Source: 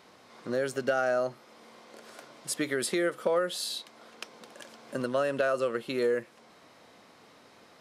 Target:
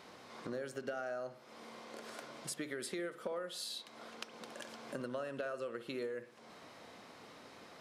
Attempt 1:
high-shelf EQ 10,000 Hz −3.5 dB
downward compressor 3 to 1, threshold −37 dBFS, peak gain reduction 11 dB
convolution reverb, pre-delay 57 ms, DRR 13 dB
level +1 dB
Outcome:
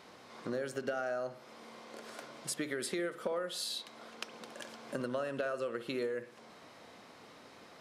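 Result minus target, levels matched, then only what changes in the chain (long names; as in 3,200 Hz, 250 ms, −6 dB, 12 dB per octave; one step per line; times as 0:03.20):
downward compressor: peak gain reduction −4.5 dB
change: downward compressor 3 to 1, threshold −44 dBFS, peak gain reduction 16 dB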